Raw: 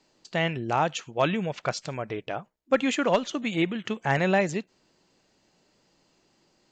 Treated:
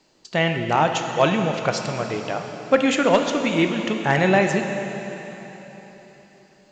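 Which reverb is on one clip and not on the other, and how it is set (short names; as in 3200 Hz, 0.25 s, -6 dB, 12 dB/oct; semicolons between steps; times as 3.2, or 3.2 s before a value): plate-style reverb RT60 3.9 s, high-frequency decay 1×, DRR 4.5 dB; gain +5 dB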